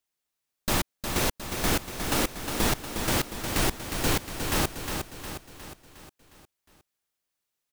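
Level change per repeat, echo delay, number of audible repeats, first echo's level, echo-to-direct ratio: -5.5 dB, 359 ms, 6, -6.5 dB, -5.0 dB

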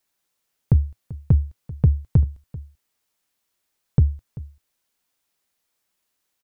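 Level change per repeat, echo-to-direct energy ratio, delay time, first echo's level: no regular repeats, -18.5 dB, 389 ms, -18.5 dB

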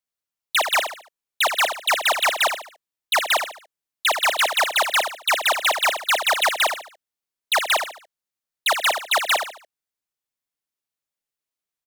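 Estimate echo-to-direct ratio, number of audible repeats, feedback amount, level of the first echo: -7.5 dB, 4, 36%, -8.0 dB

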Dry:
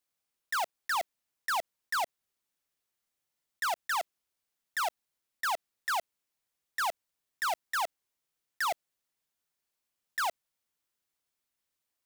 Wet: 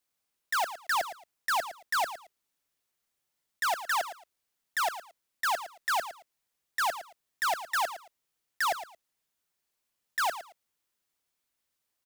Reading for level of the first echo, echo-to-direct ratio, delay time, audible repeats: -12.5 dB, -12.5 dB, 112 ms, 2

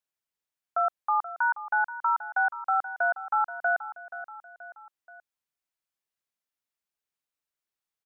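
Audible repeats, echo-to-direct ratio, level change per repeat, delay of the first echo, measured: 3, -12.0 dB, -5.5 dB, 479 ms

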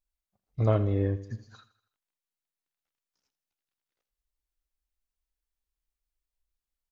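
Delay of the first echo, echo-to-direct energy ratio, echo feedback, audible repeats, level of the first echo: 81 ms, -15.0 dB, 49%, 4, -16.0 dB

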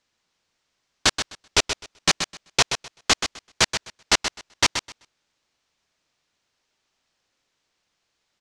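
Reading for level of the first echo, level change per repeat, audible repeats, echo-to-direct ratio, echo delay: -8.5 dB, -15.5 dB, 2, -8.5 dB, 128 ms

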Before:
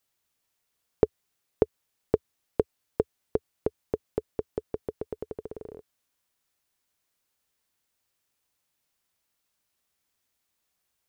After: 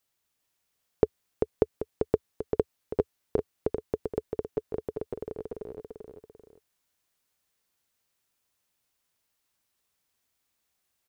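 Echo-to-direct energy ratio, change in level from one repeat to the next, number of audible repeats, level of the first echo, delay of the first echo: -4.0 dB, -7.0 dB, 2, -5.0 dB, 392 ms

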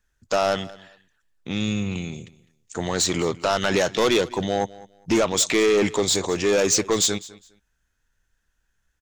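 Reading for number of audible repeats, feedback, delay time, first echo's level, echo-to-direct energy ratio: 2, 21%, 205 ms, -20.0 dB, -20.0 dB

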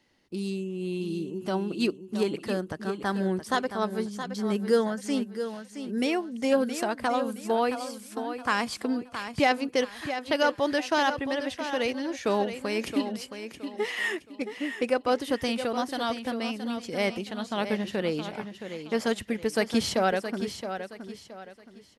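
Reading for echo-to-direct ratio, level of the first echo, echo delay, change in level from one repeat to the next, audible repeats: -9.0 dB, -9.5 dB, 670 ms, -10.0 dB, 3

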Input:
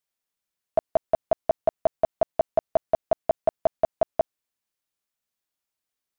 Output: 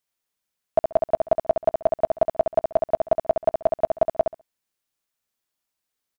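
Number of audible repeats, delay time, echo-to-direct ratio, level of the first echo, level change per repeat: 2, 67 ms, -6.0 dB, -6.0 dB, -16.0 dB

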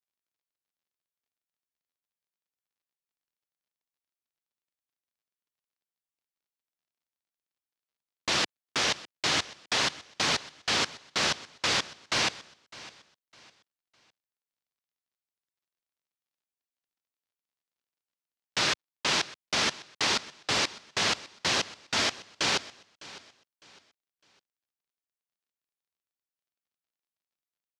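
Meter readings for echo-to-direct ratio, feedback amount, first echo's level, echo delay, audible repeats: -18.5 dB, 31%, -19.0 dB, 606 ms, 2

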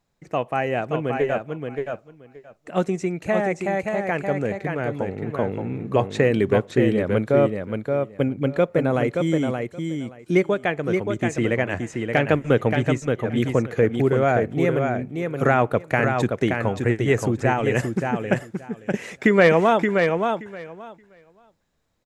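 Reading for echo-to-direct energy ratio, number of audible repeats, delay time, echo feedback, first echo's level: -5.0 dB, 2, 575 ms, 15%, -5.0 dB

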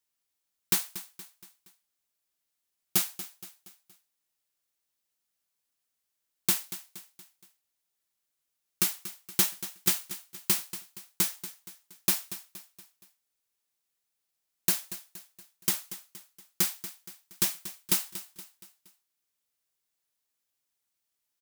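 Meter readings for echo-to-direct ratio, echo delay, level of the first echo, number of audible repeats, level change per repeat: -13.0 dB, 235 ms, -14.0 dB, 4, -6.5 dB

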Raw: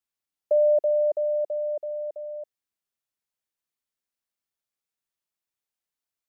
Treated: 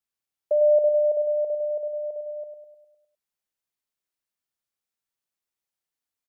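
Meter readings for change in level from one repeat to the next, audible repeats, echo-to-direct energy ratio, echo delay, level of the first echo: -5.5 dB, 6, -5.5 dB, 102 ms, -7.0 dB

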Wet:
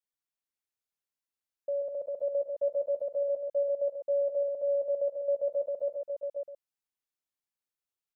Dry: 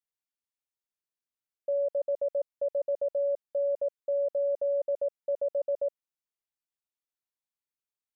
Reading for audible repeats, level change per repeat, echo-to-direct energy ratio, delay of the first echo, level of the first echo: 4, no regular repeats, -2.0 dB, 42 ms, -14.0 dB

